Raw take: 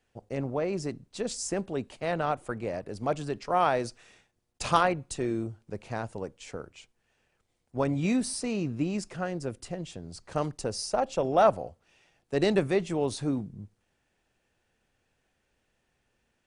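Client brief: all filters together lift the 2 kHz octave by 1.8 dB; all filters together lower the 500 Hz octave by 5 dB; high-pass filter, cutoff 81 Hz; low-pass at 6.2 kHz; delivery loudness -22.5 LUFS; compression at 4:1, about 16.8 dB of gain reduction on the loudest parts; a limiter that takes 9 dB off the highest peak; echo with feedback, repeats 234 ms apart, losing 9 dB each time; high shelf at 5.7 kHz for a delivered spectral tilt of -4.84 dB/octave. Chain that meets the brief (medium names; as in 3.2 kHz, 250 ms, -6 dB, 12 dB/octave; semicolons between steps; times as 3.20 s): high-pass 81 Hz; low-pass 6.2 kHz; peaking EQ 500 Hz -7 dB; peaking EQ 2 kHz +3.5 dB; treble shelf 5.7 kHz -4.5 dB; compression 4:1, threshold -40 dBFS; peak limiter -34 dBFS; feedback delay 234 ms, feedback 35%, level -9 dB; trim +22.5 dB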